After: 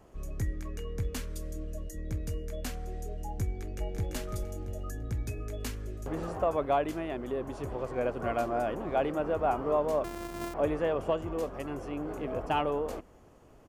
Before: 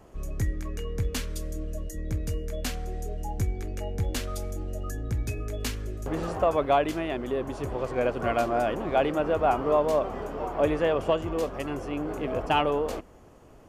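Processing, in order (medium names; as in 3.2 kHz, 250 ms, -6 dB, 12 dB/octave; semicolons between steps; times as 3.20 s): 10.04–10.54 s: sorted samples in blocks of 128 samples; dynamic bell 3.6 kHz, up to -5 dB, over -46 dBFS, Q 0.75; 3.44–4.09 s: echo throw 340 ms, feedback 35%, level -4 dB; trim -4.5 dB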